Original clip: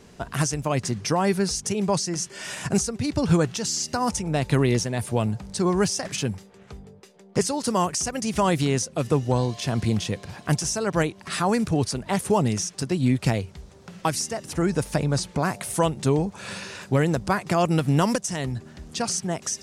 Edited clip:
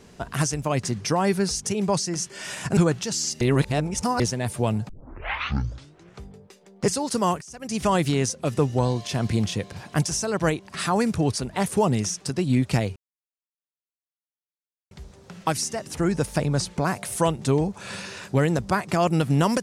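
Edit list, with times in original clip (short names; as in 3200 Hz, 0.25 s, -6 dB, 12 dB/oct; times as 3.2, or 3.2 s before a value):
2.77–3.3 cut
3.94–4.73 reverse
5.42 tape start 1.32 s
7.94–8.29 fade in quadratic, from -19.5 dB
13.49 insert silence 1.95 s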